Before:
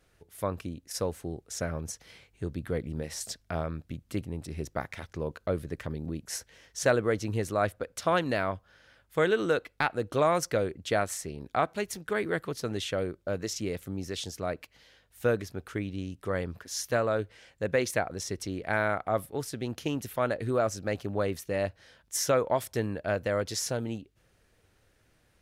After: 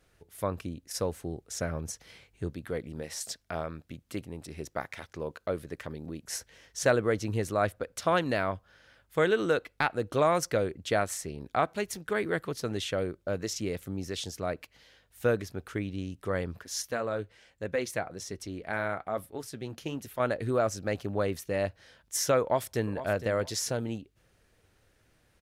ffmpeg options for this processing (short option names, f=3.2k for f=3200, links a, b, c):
-filter_complex "[0:a]asettb=1/sr,asplit=3[a][b][c];[a]atrim=end=2.504[d];[b]atrim=start=2.5:end=6.25,asetpts=PTS-STARTPTS,afade=t=in:d=0.004:c=qsin,afade=t=out:st=3.746:d=0.004:c=qsin,lowshelf=f=210:g=-9[e];[c]atrim=start=6.246[f];[d][e]acrossfade=d=0.004:c1=hsin:c2=qsin[g];[g][f]acrossfade=d=0.004:c1=qsin:c2=hsin,asettb=1/sr,asplit=3[h][i][j];[h]atrim=end=16.824[k];[i]atrim=start=16.82:end=20.2,asetpts=PTS-STARTPTS,afade=t=in:d=0.004:c=qsin,afade=t=out:st=3.376:d=0.004:c=qsin,flanger=delay=2.9:depth=3.7:regen=-67:speed=1.2:shape=triangular[l];[j]atrim=start=20.196[m];[k][l]acrossfade=d=0.004:c1=hsin:c2=qsin[n];[n][m]acrossfade=d=0.004:c1=qsin:c2=hsin,asplit=2[o][p];[p]afade=t=in:st=22.41:d=0.01,afade=t=out:st=23.03:d=0.01,aecho=0:1:460|920:0.237137|0.0474275[q];[o][q]amix=inputs=2:normalize=0"